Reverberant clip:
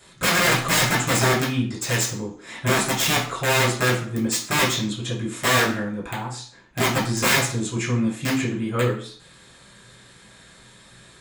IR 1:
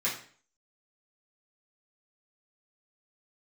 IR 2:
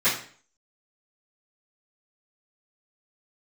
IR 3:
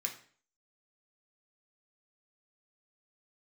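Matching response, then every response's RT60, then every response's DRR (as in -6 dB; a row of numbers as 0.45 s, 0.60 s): 1; 0.45 s, 0.45 s, 0.45 s; -9.0 dB, -17.5 dB, 1.0 dB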